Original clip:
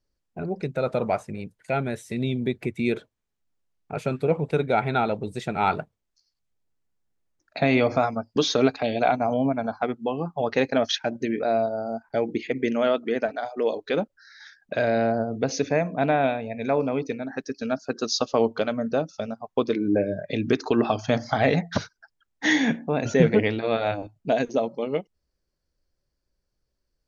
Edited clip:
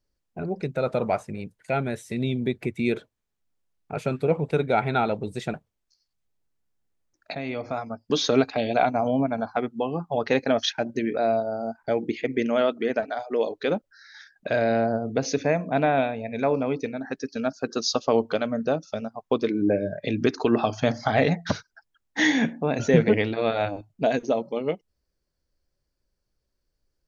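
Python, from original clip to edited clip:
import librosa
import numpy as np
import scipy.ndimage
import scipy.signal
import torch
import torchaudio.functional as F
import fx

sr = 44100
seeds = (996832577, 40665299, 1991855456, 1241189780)

y = fx.edit(x, sr, fx.cut(start_s=5.54, length_s=0.26),
    fx.fade_in_from(start_s=7.61, length_s=0.9, curve='qua', floor_db=-12.0), tone=tone)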